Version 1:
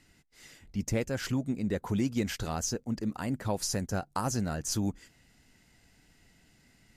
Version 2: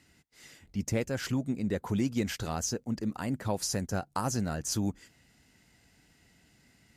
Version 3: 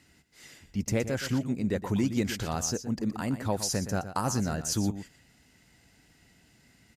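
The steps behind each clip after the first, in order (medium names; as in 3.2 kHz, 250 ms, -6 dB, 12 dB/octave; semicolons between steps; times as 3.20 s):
high-pass 50 Hz
delay 119 ms -11.5 dB; trim +2 dB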